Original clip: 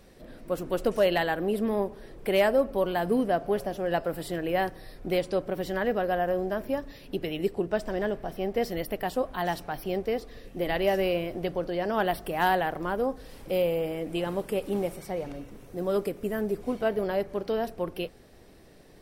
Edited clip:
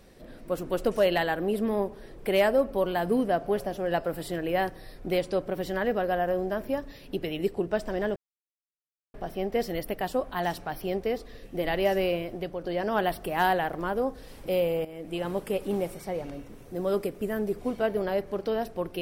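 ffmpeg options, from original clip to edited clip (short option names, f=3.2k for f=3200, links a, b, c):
-filter_complex "[0:a]asplit=4[a][b][c][d];[a]atrim=end=8.16,asetpts=PTS-STARTPTS,afade=t=out:st=8.156:d=0.004:c=hsin,apad=pad_dur=0.98[e];[b]atrim=start=8.16:end=11.66,asetpts=PTS-STARTPTS,afade=t=in:d=0.004:c=hsin,afade=t=out:st=2.95:d=0.55:silence=0.501187[f];[c]atrim=start=11.66:end=13.87,asetpts=PTS-STARTPTS,afade=t=in:d=0.004:c=hsin:silence=0.501187,afade=t=out:st=2.206:d=0.004:c=hsin:silence=0.237137[g];[d]atrim=start=13.87,asetpts=PTS-STARTPTS,afade=t=in:d=0.45:silence=0.237137[h];[e][f][g][h]concat=n=4:v=0:a=1"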